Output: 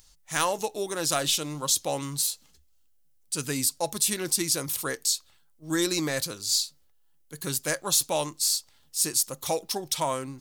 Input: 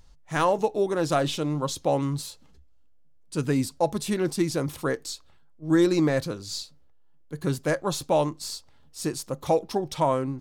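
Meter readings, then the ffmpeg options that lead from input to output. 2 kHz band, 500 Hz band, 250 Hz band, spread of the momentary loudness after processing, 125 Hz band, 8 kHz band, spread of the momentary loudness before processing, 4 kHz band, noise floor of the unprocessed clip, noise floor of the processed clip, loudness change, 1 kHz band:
+0.5 dB, −6.5 dB, −7.5 dB, 7 LU, −8.5 dB, +12.0 dB, 12 LU, +7.5 dB, −53 dBFS, −62 dBFS, 0.0 dB, −4.0 dB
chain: -af "crystalizer=i=10:c=0,volume=-8.5dB"

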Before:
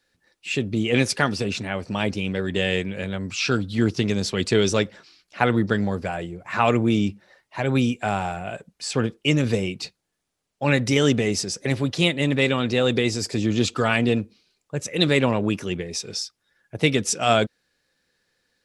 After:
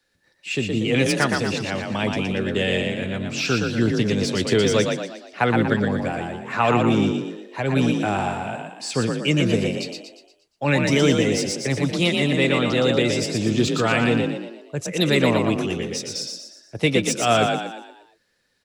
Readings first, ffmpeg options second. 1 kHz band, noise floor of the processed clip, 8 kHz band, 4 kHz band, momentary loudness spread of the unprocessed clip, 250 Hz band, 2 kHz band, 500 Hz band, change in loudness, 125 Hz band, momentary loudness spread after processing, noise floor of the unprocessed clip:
+2.0 dB, −65 dBFS, +0.5 dB, +1.0 dB, 10 LU, +2.0 dB, +1.5 dB, +2.0 dB, +1.5 dB, +1.0 dB, 11 LU, −78 dBFS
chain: -filter_complex "[0:a]acrossover=split=130|440|2600[link_01][link_02][link_03][link_04];[link_04]asoftclip=type=tanh:threshold=-18.5dB[link_05];[link_01][link_02][link_03][link_05]amix=inputs=4:normalize=0,asplit=7[link_06][link_07][link_08][link_09][link_10][link_11][link_12];[link_07]adelay=118,afreqshift=38,volume=-4dB[link_13];[link_08]adelay=236,afreqshift=76,volume=-10.9dB[link_14];[link_09]adelay=354,afreqshift=114,volume=-17.9dB[link_15];[link_10]adelay=472,afreqshift=152,volume=-24.8dB[link_16];[link_11]adelay=590,afreqshift=190,volume=-31.7dB[link_17];[link_12]adelay=708,afreqshift=228,volume=-38.7dB[link_18];[link_06][link_13][link_14][link_15][link_16][link_17][link_18]amix=inputs=7:normalize=0"

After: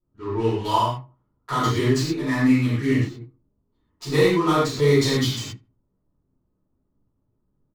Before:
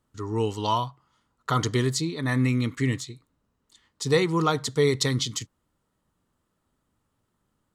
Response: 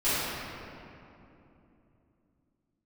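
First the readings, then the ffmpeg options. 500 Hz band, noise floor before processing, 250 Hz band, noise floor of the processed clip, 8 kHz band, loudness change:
+4.5 dB, −76 dBFS, +6.0 dB, −73 dBFS, −1.5 dB, +4.0 dB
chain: -filter_complex "[0:a]adynamicsmooth=sensitivity=7.5:basefreq=590,asplit=2[link_01][link_02];[link_02]adelay=77,lowpass=frequency=1200:poles=1,volume=-19.5dB,asplit=2[link_03][link_04];[link_04]adelay=77,lowpass=frequency=1200:poles=1,volume=0.34,asplit=2[link_05][link_06];[link_06]adelay=77,lowpass=frequency=1200:poles=1,volume=0.34[link_07];[link_01][link_03][link_05][link_07]amix=inputs=4:normalize=0[link_08];[1:a]atrim=start_sample=2205,afade=type=out:start_time=0.19:duration=0.01,atrim=end_sample=8820[link_09];[link_08][link_09]afir=irnorm=-1:irlink=0,volume=-7.5dB"

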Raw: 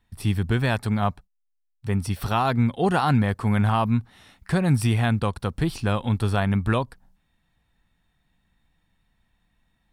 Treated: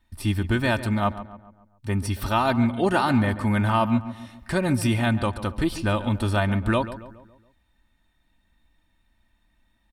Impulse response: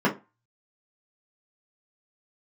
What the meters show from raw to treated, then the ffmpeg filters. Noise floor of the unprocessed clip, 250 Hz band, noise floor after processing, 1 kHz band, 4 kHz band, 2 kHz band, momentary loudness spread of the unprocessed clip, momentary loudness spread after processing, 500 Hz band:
−73 dBFS, +1.0 dB, −68 dBFS, +0.5 dB, +1.5 dB, +2.0 dB, 6 LU, 9 LU, +1.5 dB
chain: -filter_complex "[0:a]aecho=1:1:3.3:0.62,asplit=2[link_01][link_02];[link_02]adelay=139,lowpass=frequency=2200:poles=1,volume=-13dB,asplit=2[link_03][link_04];[link_04]adelay=139,lowpass=frequency=2200:poles=1,volume=0.48,asplit=2[link_05][link_06];[link_06]adelay=139,lowpass=frequency=2200:poles=1,volume=0.48,asplit=2[link_07][link_08];[link_08]adelay=139,lowpass=frequency=2200:poles=1,volume=0.48,asplit=2[link_09][link_10];[link_10]adelay=139,lowpass=frequency=2200:poles=1,volume=0.48[link_11];[link_01][link_03][link_05][link_07][link_09][link_11]amix=inputs=6:normalize=0"

